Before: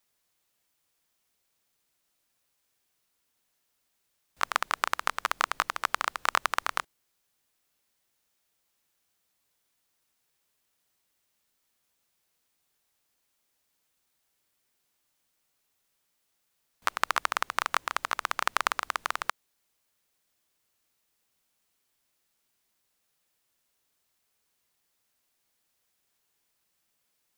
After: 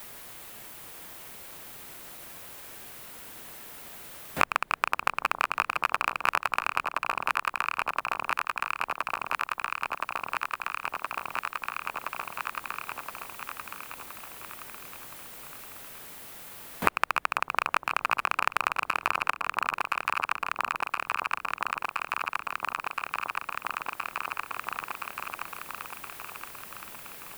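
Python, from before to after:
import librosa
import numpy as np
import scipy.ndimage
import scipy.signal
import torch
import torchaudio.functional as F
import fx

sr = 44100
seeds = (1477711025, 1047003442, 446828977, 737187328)

y = fx.rattle_buzz(x, sr, strikes_db=-50.0, level_db=-14.0)
y = fx.peak_eq(y, sr, hz=5700.0, db=-7.5, octaves=1.5)
y = fx.echo_alternate(y, sr, ms=510, hz=930.0, feedback_pct=70, wet_db=-6)
y = fx.band_squash(y, sr, depth_pct=100)
y = F.gain(torch.from_numpy(y), 4.5).numpy()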